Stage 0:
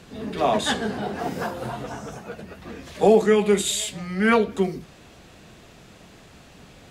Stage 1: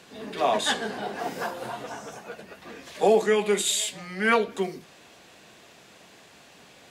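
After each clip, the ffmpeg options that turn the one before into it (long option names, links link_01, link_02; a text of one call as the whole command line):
ffmpeg -i in.wav -af "highpass=frequency=530:poles=1,bandreject=frequency=1300:width=19" out.wav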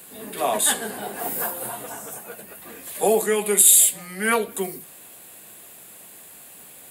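ffmpeg -i in.wav -af "aexciter=amount=13:drive=6.9:freq=8400" out.wav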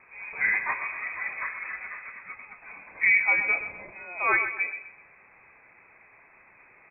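ffmpeg -i in.wav -filter_complex "[0:a]lowpass=frequency=2300:width_type=q:width=0.5098,lowpass=frequency=2300:width_type=q:width=0.6013,lowpass=frequency=2300:width_type=q:width=0.9,lowpass=frequency=2300:width_type=q:width=2.563,afreqshift=-2700,asplit=2[link_01][link_02];[link_02]aecho=0:1:126|252|378|504:0.299|0.102|0.0345|0.0117[link_03];[link_01][link_03]amix=inputs=2:normalize=0,volume=-2dB" out.wav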